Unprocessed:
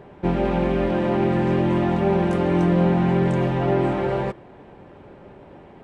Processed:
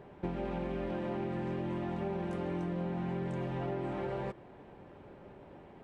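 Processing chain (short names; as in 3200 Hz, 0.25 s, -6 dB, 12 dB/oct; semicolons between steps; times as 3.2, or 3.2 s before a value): compressor, threshold -25 dBFS, peak gain reduction 10 dB; gain -8 dB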